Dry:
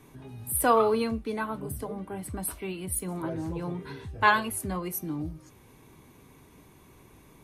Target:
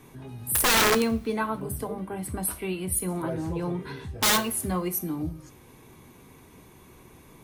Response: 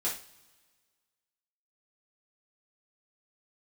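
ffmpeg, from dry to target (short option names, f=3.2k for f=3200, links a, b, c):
-filter_complex "[0:a]aeval=exprs='(mod(8.91*val(0)+1,2)-1)/8.91':c=same,bandreject=f=50:t=h:w=6,bandreject=f=100:t=h:w=6,bandreject=f=150:t=h:w=6,bandreject=f=200:t=h:w=6,asplit=2[a][b];[1:a]atrim=start_sample=2205,highshelf=f=8.8k:g=7[c];[b][c]afir=irnorm=-1:irlink=0,volume=-16dB[d];[a][d]amix=inputs=2:normalize=0,volume=2.5dB"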